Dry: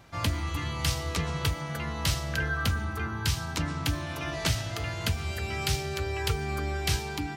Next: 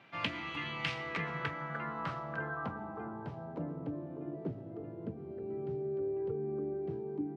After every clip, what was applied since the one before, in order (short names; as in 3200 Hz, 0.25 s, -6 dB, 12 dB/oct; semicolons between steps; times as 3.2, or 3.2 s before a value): HPF 150 Hz 24 dB/oct; low-pass sweep 2700 Hz -> 390 Hz, 0.69–4.28; gain -6 dB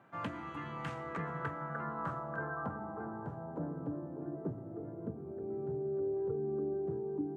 band shelf 3400 Hz -16 dB; darkening echo 0.626 s, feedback 59%, low-pass 2100 Hz, level -18 dB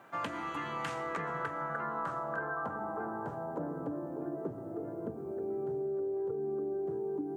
tone controls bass -10 dB, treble +7 dB; compressor, threshold -40 dBFS, peak gain reduction 6.5 dB; gain +7.5 dB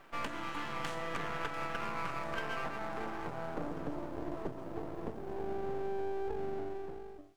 ending faded out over 0.91 s; half-wave rectifier; thin delay 0.694 s, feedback 69%, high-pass 5200 Hz, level -11.5 dB; gain +2.5 dB